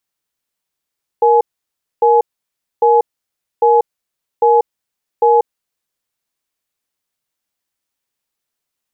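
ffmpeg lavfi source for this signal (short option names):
-f lavfi -i "aevalsrc='0.316*(sin(2*PI*469*t)+sin(2*PI*844*t))*clip(min(mod(t,0.8),0.19-mod(t,0.8))/0.005,0,1)':d=4.26:s=44100"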